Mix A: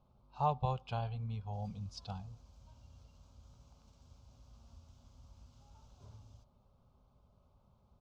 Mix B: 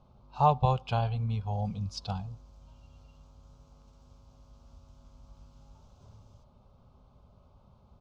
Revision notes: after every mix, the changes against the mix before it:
speech +9.0 dB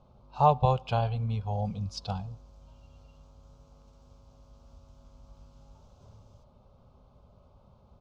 speech: send +7.0 dB
master: add parametric band 530 Hz +4 dB 0.72 octaves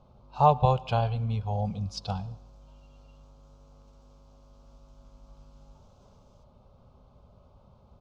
speech: send +10.0 dB
background: add linear-phase brick-wall high-pass 200 Hz

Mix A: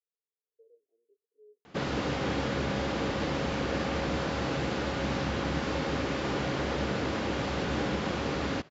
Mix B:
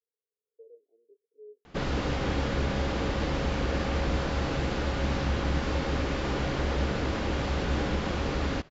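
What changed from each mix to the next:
speech +9.0 dB
master: remove high-pass filter 110 Hz 12 dB per octave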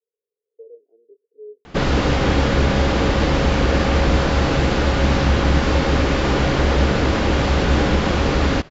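speech +10.5 dB
background +11.5 dB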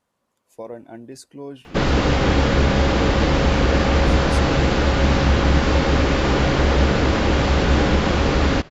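speech: remove flat-topped band-pass 440 Hz, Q 7.8

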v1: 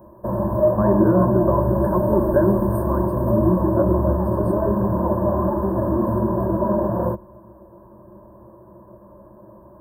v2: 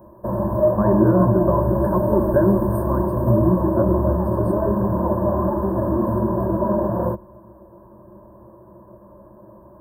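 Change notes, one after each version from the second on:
speech: remove high-pass filter 140 Hz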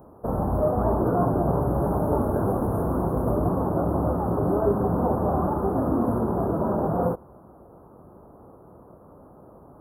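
speech −9.0 dB
master: remove EQ curve with evenly spaced ripples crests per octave 1.3, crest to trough 17 dB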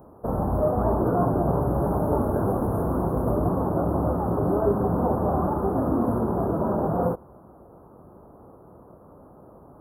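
master: add parametric band 8,500 Hz −2 dB 0.32 octaves

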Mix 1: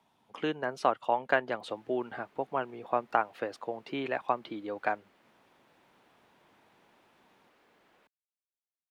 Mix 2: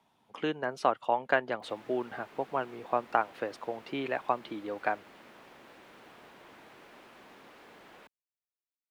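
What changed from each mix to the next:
background +12.0 dB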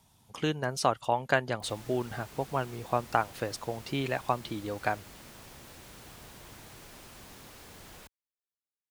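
master: remove three-way crossover with the lows and the highs turned down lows −22 dB, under 210 Hz, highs −18 dB, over 3,200 Hz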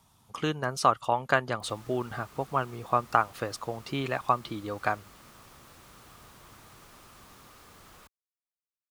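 background −4.5 dB
master: add parametric band 1,200 Hz +10 dB 0.37 octaves

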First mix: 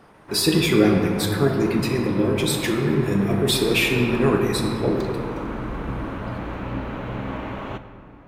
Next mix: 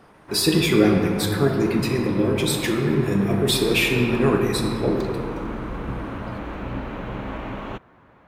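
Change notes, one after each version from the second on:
background: send off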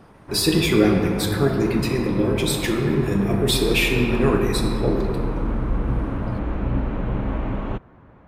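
background: add spectral tilt −2.5 dB per octave

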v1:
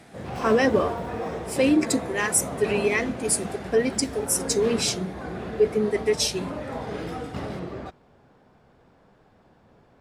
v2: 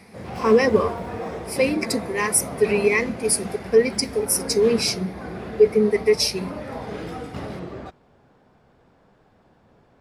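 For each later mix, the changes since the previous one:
speech: add EQ curve with evenly spaced ripples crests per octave 0.87, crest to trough 12 dB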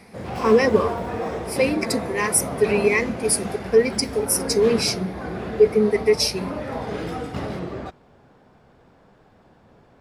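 background +3.5 dB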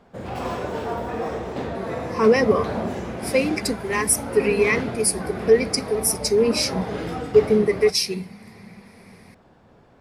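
speech: entry +1.75 s

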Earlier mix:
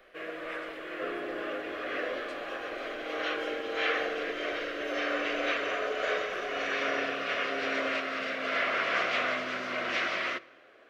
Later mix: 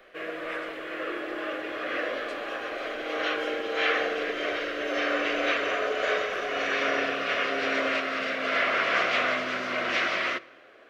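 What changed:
first sound +4.0 dB
second sound: add transistor ladder low-pass 410 Hz, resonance 65%

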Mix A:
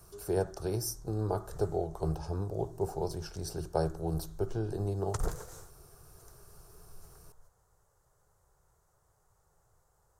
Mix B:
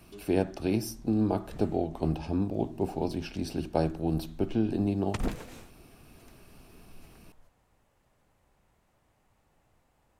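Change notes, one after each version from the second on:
master: remove drawn EQ curve 110 Hz 0 dB, 170 Hz −4 dB, 240 Hz −23 dB, 410 Hz +1 dB, 620 Hz −4 dB, 1,400 Hz +1 dB, 2,500 Hz −18 dB, 6,400 Hz +6 dB, 11,000 Hz +4 dB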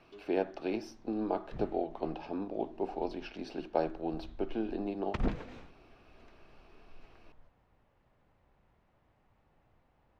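speech: add high-pass filter 400 Hz 12 dB per octave
master: add high-frequency loss of the air 220 metres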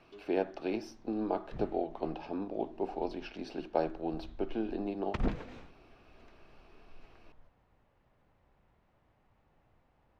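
nothing changed

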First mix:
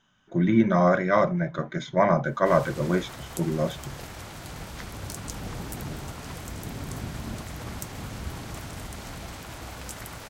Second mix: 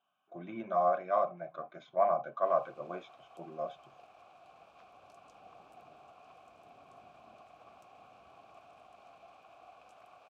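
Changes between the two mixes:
background −5.5 dB
master: add formant filter a

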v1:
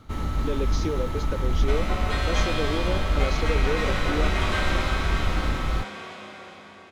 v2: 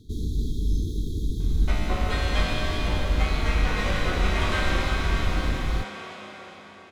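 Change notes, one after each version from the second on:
speech: muted
first sound: add linear-phase brick-wall band-stop 470–3,200 Hz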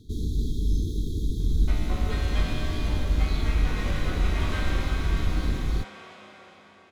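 second sound −7.0 dB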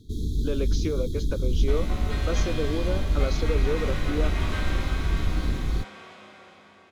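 speech: unmuted

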